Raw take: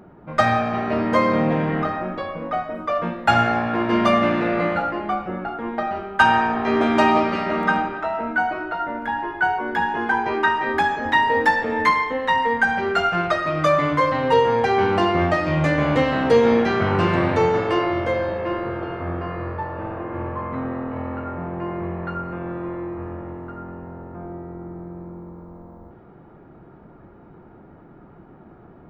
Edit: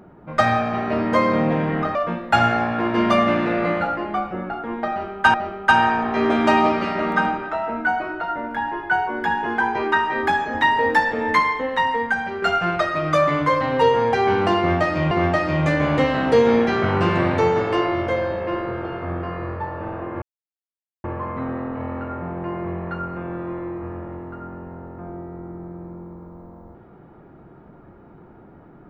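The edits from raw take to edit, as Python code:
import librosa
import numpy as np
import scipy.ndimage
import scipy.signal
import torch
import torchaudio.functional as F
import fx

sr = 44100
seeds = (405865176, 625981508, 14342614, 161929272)

y = fx.edit(x, sr, fx.cut(start_s=1.95, length_s=0.95),
    fx.repeat(start_s=5.85, length_s=0.44, count=2),
    fx.fade_out_to(start_s=12.21, length_s=0.72, floor_db=-6.5),
    fx.repeat(start_s=15.09, length_s=0.53, count=2),
    fx.insert_silence(at_s=20.2, length_s=0.82), tone=tone)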